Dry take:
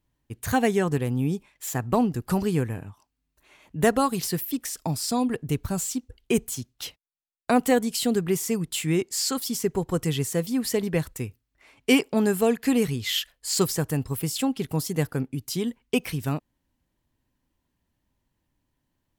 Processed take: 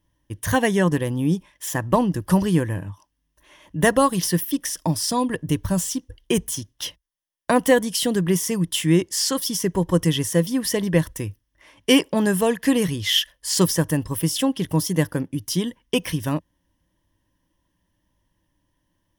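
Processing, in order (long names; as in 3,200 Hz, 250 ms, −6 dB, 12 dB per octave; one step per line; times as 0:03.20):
EQ curve with evenly spaced ripples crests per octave 1.2, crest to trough 9 dB
level +4 dB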